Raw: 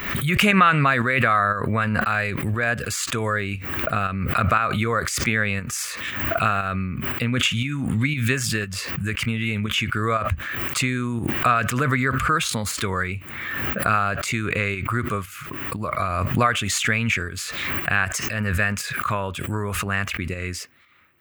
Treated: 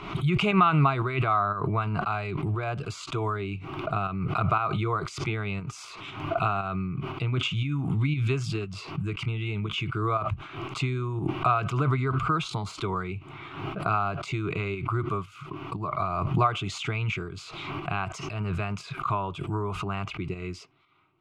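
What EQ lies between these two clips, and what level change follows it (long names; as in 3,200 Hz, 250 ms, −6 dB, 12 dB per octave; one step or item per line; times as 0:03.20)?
low-pass filter 2,800 Hz 12 dB per octave
phaser with its sweep stopped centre 350 Hz, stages 8
0.0 dB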